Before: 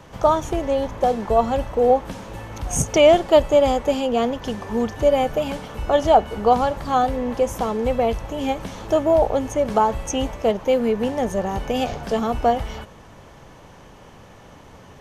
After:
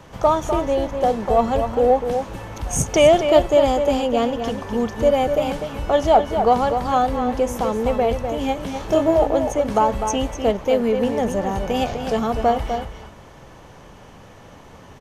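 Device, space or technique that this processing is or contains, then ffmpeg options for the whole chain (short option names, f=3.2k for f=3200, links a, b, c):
parallel distortion: -filter_complex "[0:a]asplit=2[a][b];[b]asoftclip=type=hard:threshold=-15.5dB,volume=-14dB[c];[a][c]amix=inputs=2:normalize=0,asettb=1/sr,asplit=3[d][e][f];[d]atrim=end=8.734[g];[e]atrim=start=8.73:end=9.16,asetpts=PTS-STARTPTS,afade=t=in:d=0.004:c=qsin,afade=t=out:st=0.426:d=0.004:c=qsin,asplit=2[h][i];[i]adelay=25,volume=-3dB[j];[h][j]amix=inputs=2:normalize=0,atrim=end_sample=18963[k];[f]atrim=start=9.156[l];[g][k]acrossfade=d=0.004:c1=hsin:c2=qsin[m];[m][l]acrossfade=d=0.004:c1=qsin:c2=hsin,asplit=2[n][o];[o]adelay=250.7,volume=-7dB,highshelf=f=4k:g=-5.64[p];[n][p]amix=inputs=2:normalize=0,volume=-1dB"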